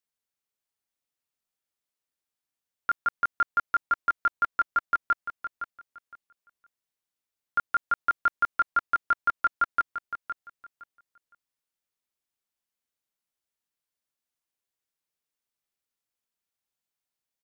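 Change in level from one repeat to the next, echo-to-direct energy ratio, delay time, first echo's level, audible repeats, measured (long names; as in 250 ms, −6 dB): −13.5 dB, −10.0 dB, 513 ms, −10.0 dB, 2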